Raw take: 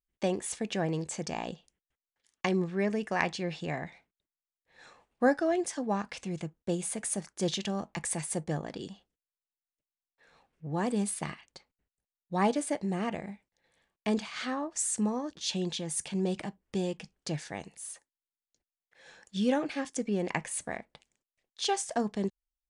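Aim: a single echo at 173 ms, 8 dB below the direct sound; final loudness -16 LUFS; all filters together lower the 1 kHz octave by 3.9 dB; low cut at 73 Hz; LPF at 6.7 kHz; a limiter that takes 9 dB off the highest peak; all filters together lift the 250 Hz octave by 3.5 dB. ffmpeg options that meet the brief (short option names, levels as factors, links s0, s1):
-af "highpass=73,lowpass=6700,equalizer=f=250:t=o:g=5,equalizer=f=1000:t=o:g=-6,alimiter=limit=0.0841:level=0:latency=1,aecho=1:1:173:0.398,volume=6.68"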